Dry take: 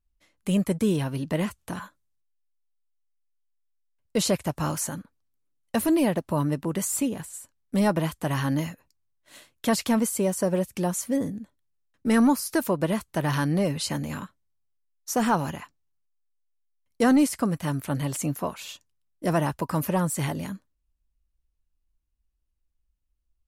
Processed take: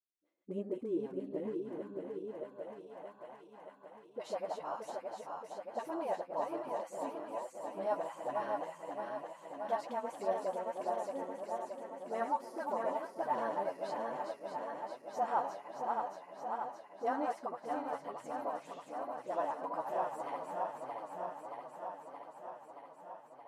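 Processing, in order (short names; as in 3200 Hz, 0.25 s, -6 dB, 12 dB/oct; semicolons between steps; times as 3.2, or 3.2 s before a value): regenerating reverse delay 0.312 s, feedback 84%, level -4.5 dB; tone controls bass -12 dB, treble +3 dB; dispersion highs, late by 48 ms, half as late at 580 Hz; flange 1.2 Hz, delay 7.7 ms, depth 3.7 ms, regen +35%; band-pass sweep 360 Hz -> 770 Hz, 1.95–3.19; gain -1 dB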